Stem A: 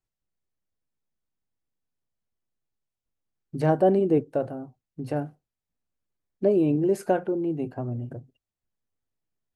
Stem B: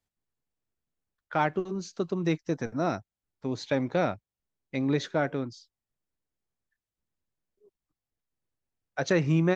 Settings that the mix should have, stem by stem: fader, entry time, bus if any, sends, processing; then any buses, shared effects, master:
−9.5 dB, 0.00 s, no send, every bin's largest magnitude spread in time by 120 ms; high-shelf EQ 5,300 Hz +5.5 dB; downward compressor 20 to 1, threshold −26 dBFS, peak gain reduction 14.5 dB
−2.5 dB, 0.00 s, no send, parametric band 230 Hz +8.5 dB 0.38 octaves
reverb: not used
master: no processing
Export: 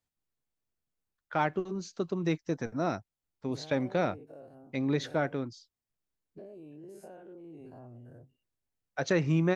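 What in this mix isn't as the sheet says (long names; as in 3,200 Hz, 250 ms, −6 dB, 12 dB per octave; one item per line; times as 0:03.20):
stem A −9.5 dB → −18.5 dB
stem B: missing parametric band 230 Hz +8.5 dB 0.38 octaves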